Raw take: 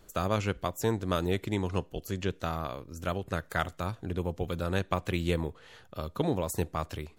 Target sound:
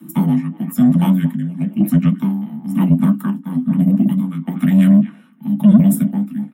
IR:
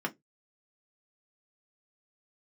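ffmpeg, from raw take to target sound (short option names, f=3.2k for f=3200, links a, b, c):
-filter_complex "[0:a]highpass=f=69:p=1,lowshelf=f=270:t=q:w=3:g=13.5,acrossover=split=440|4100[a][b][c];[a]alimiter=limit=-13dB:level=0:latency=1:release=87[d];[b]aecho=1:1:254|508|762:0.251|0.0728|0.0211[e];[c]aexciter=amount=5.2:drive=6.9:freq=8.3k[f];[d][e][f]amix=inputs=3:normalize=0,tremolo=f=0.94:d=0.82,atempo=1.1,afreqshift=-360[g];[1:a]atrim=start_sample=2205[h];[g][h]afir=irnorm=-1:irlink=0,asplit=2[i][j];[j]acontrast=86,volume=-1dB[k];[i][k]amix=inputs=2:normalize=0,volume=-6.5dB"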